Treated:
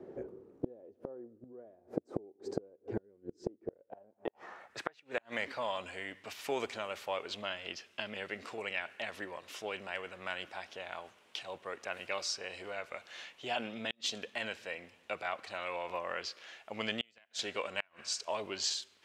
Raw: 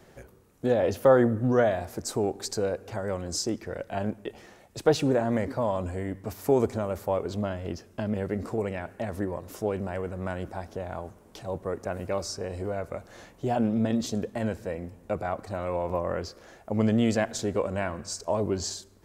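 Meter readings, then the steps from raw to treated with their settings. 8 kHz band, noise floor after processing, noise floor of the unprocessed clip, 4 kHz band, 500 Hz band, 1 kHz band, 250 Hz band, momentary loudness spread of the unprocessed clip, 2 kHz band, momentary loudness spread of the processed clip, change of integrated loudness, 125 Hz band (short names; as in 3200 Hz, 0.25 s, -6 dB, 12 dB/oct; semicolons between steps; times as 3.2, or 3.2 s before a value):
-6.5 dB, -68 dBFS, -56 dBFS, +1.0 dB, -14.0 dB, -8.5 dB, -17.5 dB, 13 LU, -1.0 dB, 10 LU, -11.0 dB, -22.0 dB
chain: band-pass sweep 370 Hz -> 2900 Hz, 3.68–5.2; flipped gate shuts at -30 dBFS, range -35 dB; spectral gain 2.9–3.44, 490–1400 Hz -10 dB; gain +11 dB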